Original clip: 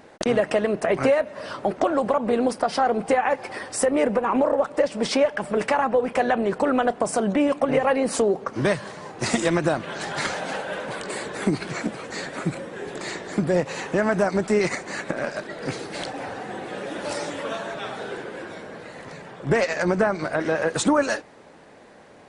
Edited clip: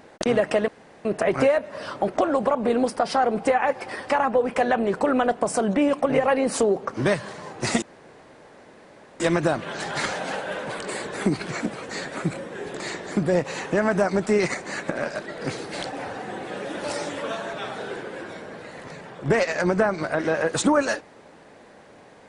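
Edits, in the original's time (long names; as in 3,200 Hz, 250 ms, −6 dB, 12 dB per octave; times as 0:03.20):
0:00.68: splice in room tone 0.37 s
0:03.73–0:05.69: remove
0:09.41: splice in room tone 1.38 s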